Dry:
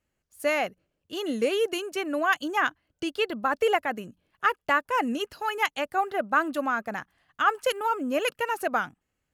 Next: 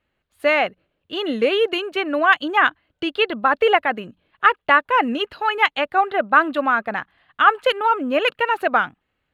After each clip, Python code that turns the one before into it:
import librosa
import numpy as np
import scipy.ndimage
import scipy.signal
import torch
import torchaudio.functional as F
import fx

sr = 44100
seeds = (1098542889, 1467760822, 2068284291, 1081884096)

y = fx.curve_eq(x, sr, hz=(160.0, 1200.0, 3900.0, 5600.0), db=(0, 5, 5, -14))
y = y * 10.0 ** (4.0 / 20.0)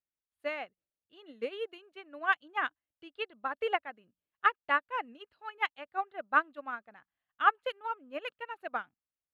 y = fx.upward_expand(x, sr, threshold_db=-24.0, expansion=2.5)
y = y * 10.0 ** (-9.0 / 20.0)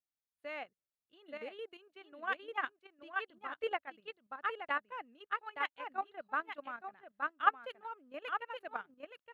y = x + 10.0 ** (-5.5 / 20.0) * np.pad(x, (int(872 * sr / 1000.0), 0))[:len(x)]
y = fx.level_steps(y, sr, step_db=10)
y = y * 10.0 ** (-2.0 / 20.0)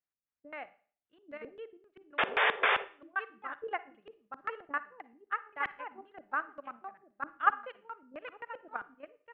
y = fx.spec_paint(x, sr, seeds[0], shape='noise', start_s=2.18, length_s=0.67, low_hz=380.0, high_hz=3700.0, level_db=-26.0)
y = fx.filter_lfo_lowpass(y, sr, shape='square', hz=3.8, low_hz=310.0, high_hz=1900.0, q=1.3)
y = fx.rev_schroeder(y, sr, rt60_s=0.43, comb_ms=38, drr_db=15.5)